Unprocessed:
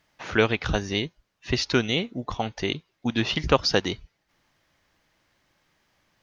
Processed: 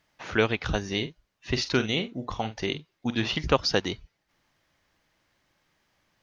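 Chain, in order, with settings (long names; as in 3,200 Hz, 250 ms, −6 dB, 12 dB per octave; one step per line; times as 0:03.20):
0:00.81–0:03.36: double-tracking delay 46 ms −11 dB
level −2.5 dB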